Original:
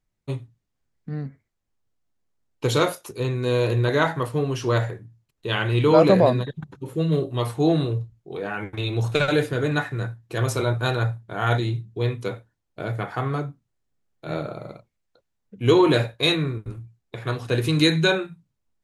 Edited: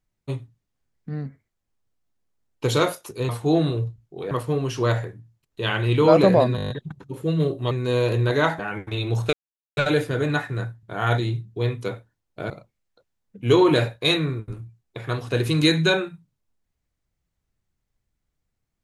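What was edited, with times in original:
3.29–4.17 s: swap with 7.43–8.45 s
6.42 s: stutter 0.02 s, 8 plays
9.19 s: insert silence 0.44 s
10.25–11.23 s: delete
12.90–14.68 s: delete

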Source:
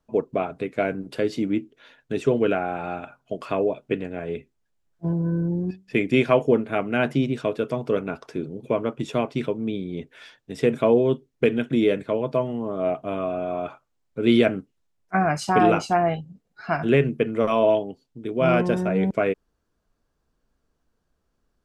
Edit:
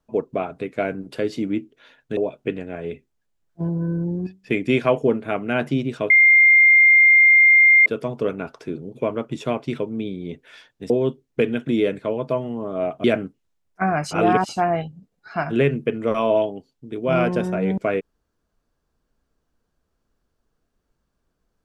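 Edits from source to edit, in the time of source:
2.17–3.61 s: delete
7.54 s: add tone 2.11 kHz -9 dBFS 1.76 s
10.58–10.94 s: delete
13.08–14.37 s: delete
15.44–15.82 s: reverse

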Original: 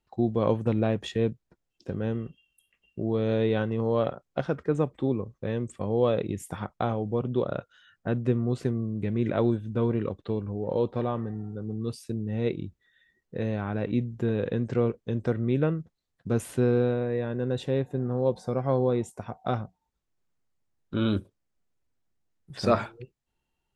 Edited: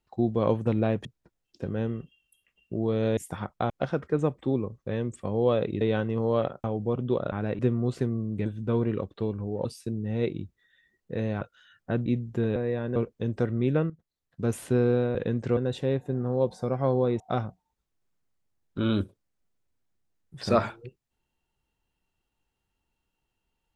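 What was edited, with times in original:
1.05–1.31 s: delete
3.43–4.26 s: swap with 6.37–6.90 s
7.58–8.23 s: swap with 13.64–13.91 s
9.10–9.54 s: delete
10.73–11.88 s: delete
14.41–14.83 s: swap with 17.02–17.42 s
15.77–16.43 s: fade in, from -13.5 dB
19.05–19.36 s: delete

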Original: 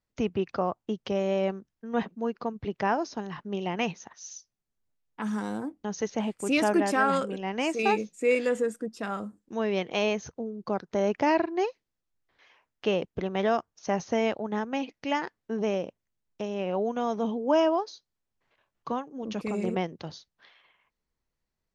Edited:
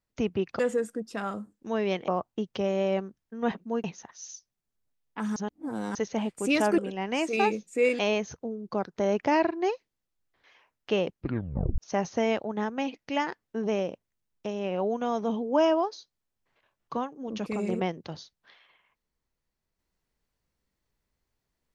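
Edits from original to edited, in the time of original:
2.35–3.86 s: delete
5.38–5.97 s: reverse
6.80–7.24 s: delete
8.45–9.94 s: move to 0.59 s
13.04 s: tape stop 0.69 s

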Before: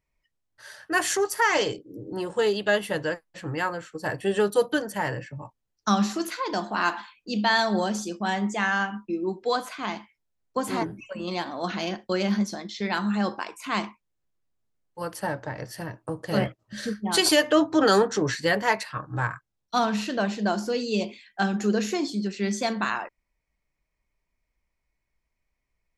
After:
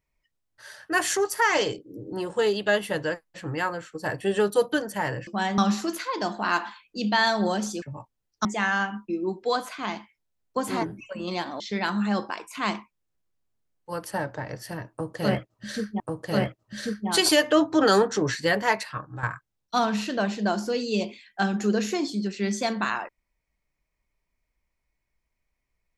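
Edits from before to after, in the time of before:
5.27–5.90 s: swap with 8.14–8.45 s
11.60–12.69 s: delete
16.00–17.09 s: loop, 2 plays
18.93–19.23 s: fade out, to -11 dB

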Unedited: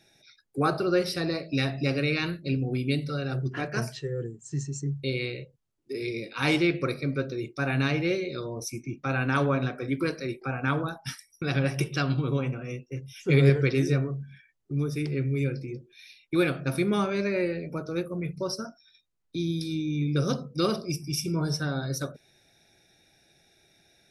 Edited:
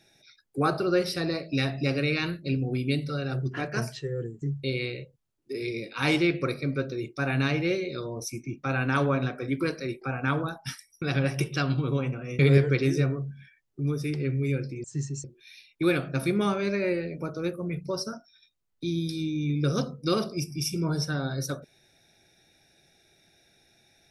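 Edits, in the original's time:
4.42–4.82 s: move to 15.76 s
12.79–13.31 s: delete

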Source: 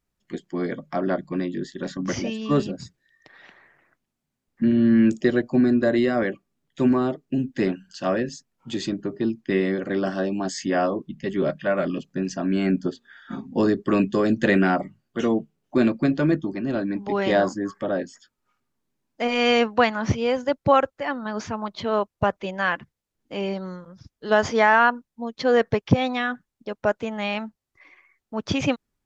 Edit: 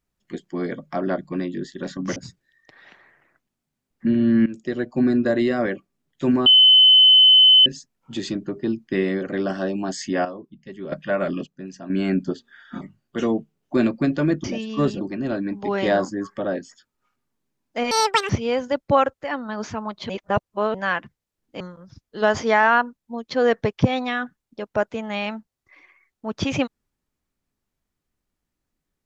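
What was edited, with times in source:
2.16–2.73 s: move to 16.45 s
5.03–5.64 s: fade in, from -18 dB
7.03–8.23 s: bleep 3.04 kHz -8.5 dBFS
10.82–11.49 s: gain -10.5 dB
12.04–12.47 s: gain -9.5 dB
13.38–14.82 s: delete
19.35–20.06 s: speed 185%
21.86–22.51 s: reverse
23.37–23.69 s: delete

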